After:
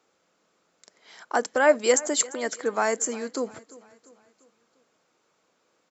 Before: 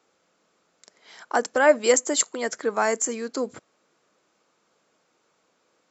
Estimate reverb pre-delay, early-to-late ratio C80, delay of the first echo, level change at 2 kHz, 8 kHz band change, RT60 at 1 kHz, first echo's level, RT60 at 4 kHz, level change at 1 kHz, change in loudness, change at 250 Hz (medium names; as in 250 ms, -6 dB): no reverb, no reverb, 346 ms, -1.5 dB, no reading, no reverb, -20.0 dB, no reverb, -1.5 dB, -1.5 dB, -1.5 dB